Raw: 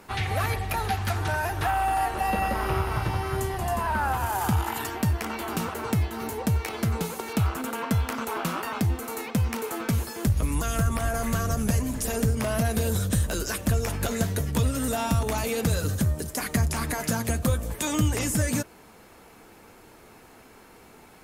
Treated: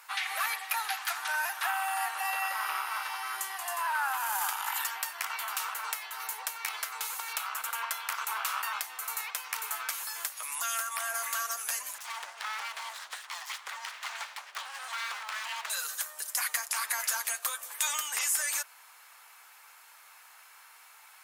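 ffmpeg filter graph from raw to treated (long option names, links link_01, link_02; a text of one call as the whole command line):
ffmpeg -i in.wav -filter_complex "[0:a]asettb=1/sr,asplit=3[link_01][link_02][link_03];[link_01]atrim=end=11.984[link_04];[link_02]atrim=start=11.98:end=15.7,asetpts=PTS-STARTPTS,afade=type=in:duration=0.004:curve=qsin,afade=type=out:start_time=3.716:duration=0.004:curve=qsin,highpass=250,lowpass=3600,aeval=exprs='abs(val(0))':channel_layout=same[link_05];[link_03]atrim=start=15.696[link_06];[link_04][link_05]acrossfade=duration=0.004:curve1=hsin:curve2=qsin[link_07];[link_07][link_06]acrossfade=duration=0.004:curve1=qsin:curve2=hsin,highpass=frequency=990:width=0.5412,highpass=frequency=990:width=1.3066,highshelf=frequency=10000:gain=5.5" out.wav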